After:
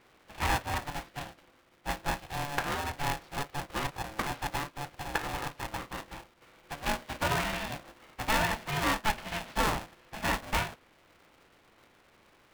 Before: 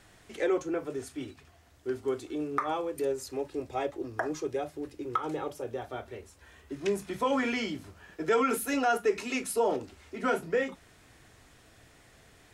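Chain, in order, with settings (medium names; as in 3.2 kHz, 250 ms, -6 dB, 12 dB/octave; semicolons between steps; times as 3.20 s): spectral contrast reduction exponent 0.47; Gaussian low-pass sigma 2.9 samples; polarity switched at an audio rate 430 Hz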